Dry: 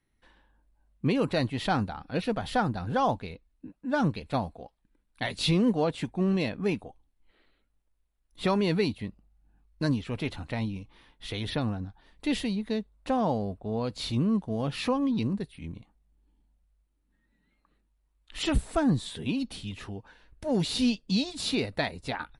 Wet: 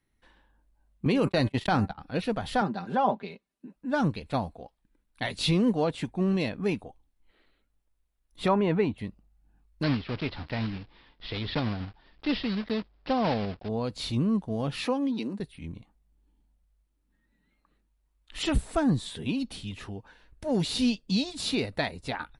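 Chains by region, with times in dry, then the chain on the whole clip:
1.05–1.98 de-hum 194.3 Hz, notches 13 + gate -31 dBFS, range -58 dB + fast leveller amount 70%
2.61–3.74 Chebyshev high-pass 240 Hz + treble ducked by the level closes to 2400 Hz, closed at -24.5 dBFS + comb 5.1 ms, depth 72%
8.48–8.98 running mean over 9 samples + bell 860 Hz +5 dB 1.5 oct
9.83–13.7 block floating point 3-bit + steep low-pass 5200 Hz 96 dB/oct
14.85–15.4 HPF 230 Hz 24 dB/oct + notch 1100 Hz, Q 9.2
whole clip: dry

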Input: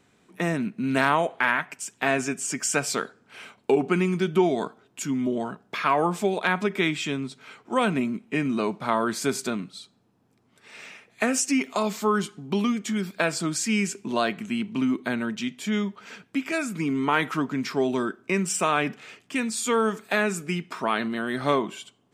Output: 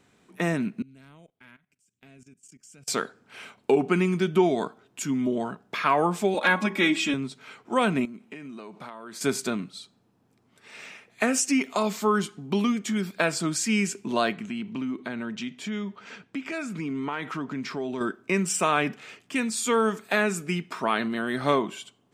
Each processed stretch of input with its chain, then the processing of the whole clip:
0.82–2.88 passive tone stack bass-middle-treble 10-0-1 + level quantiser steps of 17 dB + notch 1800 Hz, Q 14
6.34–7.14 comb 3.6 ms, depth 92% + de-hum 64.64 Hz, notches 17
8.05–9.21 compressor 16:1, threshold -35 dBFS + low shelf 120 Hz -9.5 dB
14.36–18.01 compressor 2.5:1, threshold -30 dBFS + air absorption 53 m
whole clip: dry

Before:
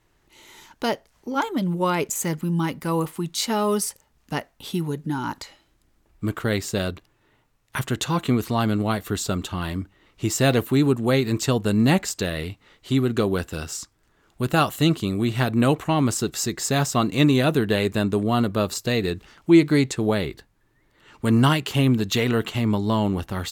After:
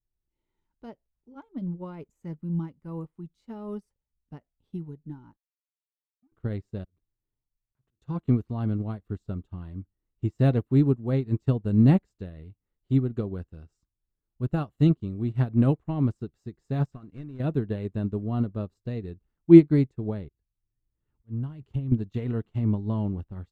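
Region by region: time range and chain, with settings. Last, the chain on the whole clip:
5.36–6.32 sine-wave speech + power-law curve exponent 2 + compressor 2.5:1, threshold -38 dBFS
6.84–8.02 compressor 16:1, threshold -35 dBFS + auto swell 0.186 s
16.92–17.4 CVSD 64 kbps + bell 1600 Hz +7 dB 1.2 oct + compressor 8:1, threshold -22 dBFS
20.28–21.92 auto swell 0.394 s + compressor 20:1, threshold -24 dBFS + bell 71 Hz +8 dB 2.3 oct
whole clip: tilt -4.5 dB/oct; upward expander 2.5:1, over -25 dBFS; gain -4 dB

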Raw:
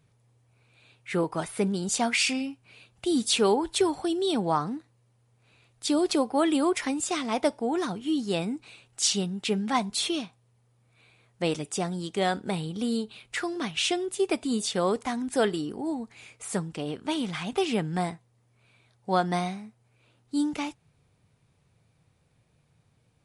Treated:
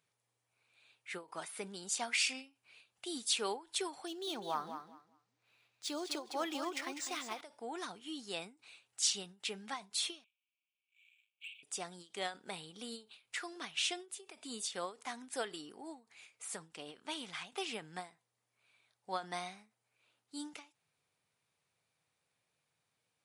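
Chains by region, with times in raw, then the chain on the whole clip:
4.07–7.41 feedback echo 0.2 s, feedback 20%, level -9 dB + decimation joined by straight lines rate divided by 3×
10.24–11.63 CVSD 16 kbps + brick-wall FIR high-pass 2200 Hz + sample leveller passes 1
whole clip: HPF 1200 Hz 6 dB/oct; ending taper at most 200 dB/s; gain -6.5 dB

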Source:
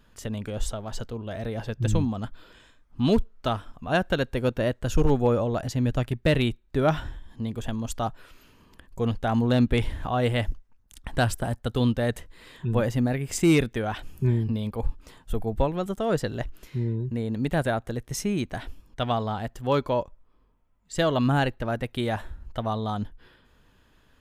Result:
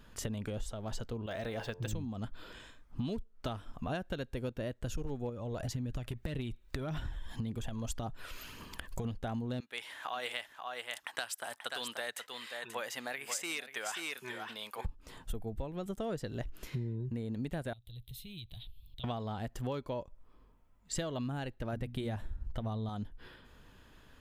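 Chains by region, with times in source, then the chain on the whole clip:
1.26–1.93 low shelf 380 Hz -11.5 dB + de-hum 88.83 Hz, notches 13 + decimation joined by straight lines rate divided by 2×
5.29–9.05 compressor 10:1, threshold -26 dBFS + phaser 1.8 Hz, delay 2.1 ms, feedback 35% + mismatched tape noise reduction encoder only
9.6–14.85 HPF 1100 Hz + echo 0.534 s -9.5 dB
17.73–19.04 EQ curve 120 Hz 0 dB, 250 Hz -22 dB, 1100 Hz -22 dB, 1600 Hz -29 dB, 2400 Hz -9 dB, 3800 Hz +10 dB, 5800 Hz -23 dB, 14000 Hz +6 dB + compressor 4:1, threshold -48 dBFS
21.73–22.89 low shelf 230 Hz +9 dB + notches 60/120/180/240/300 Hz
whole clip: dynamic EQ 1100 Hz, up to -4 dB, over -39 dBFS, Q 0.75; compressor 10:1, threshold -36 dBFS; gain +2 dB

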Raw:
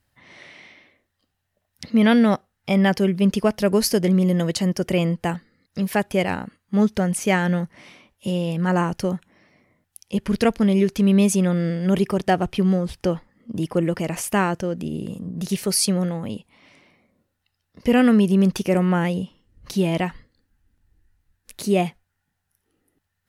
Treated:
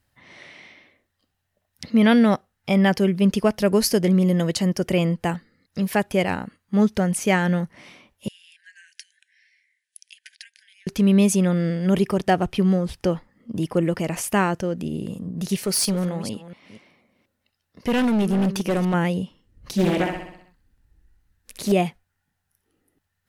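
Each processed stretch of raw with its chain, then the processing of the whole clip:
8.28–10.87 compressor 5:1, threshold -33 dBFS + brick-wall FIR band-pass 1500–11000 Hz
15.57–18.94 reverse delay 0.241 s, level -13.5 dB + low shelf 95 Hz -7 dB + hard clip -17.5 dBFS
19.73–21.72 feedback echo 64 ms, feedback 55%, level -5 dB + Doppler distortion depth 0.52 ms
whole clip: dry

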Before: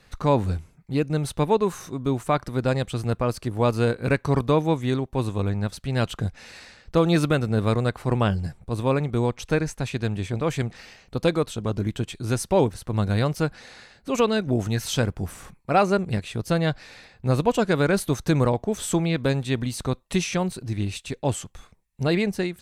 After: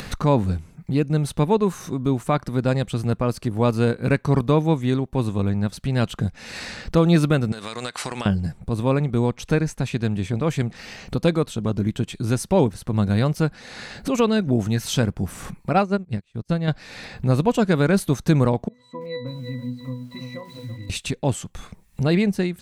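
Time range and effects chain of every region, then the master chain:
7.52–8.26 weighting filter ITU-R 468 + compressor 12:1, threshold -32 dBFS
15.73–16.68 LPF 10000 Hz + low shelf 110 Hz +7 dB + upward expander 2.5:1, over -39 dBFS
18.68–20.9 low shelf 360 Hz -12 dB + octave resonator B, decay 0.31 s + lo-fi delay 0.33 s, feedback 35%, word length 10-bit, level -11 dB
whole clip: bell 190 Hz +6 dB 1.1 oct; upward compressor, threshold -20 dBFS

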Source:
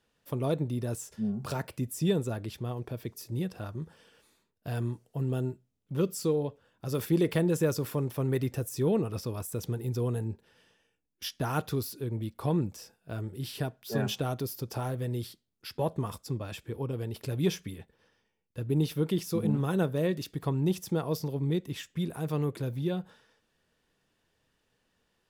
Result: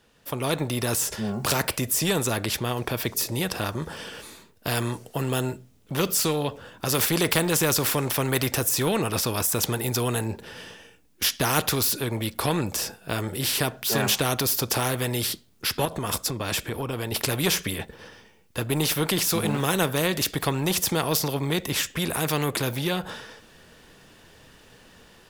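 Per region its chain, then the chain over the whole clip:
15.85–17.12 notch 830 Hz, Q 17 + compressor 2.5:1, threshold -37 dBFS
whole clip: AGC gain up to 10.5 dB; spectral compressor 2:1

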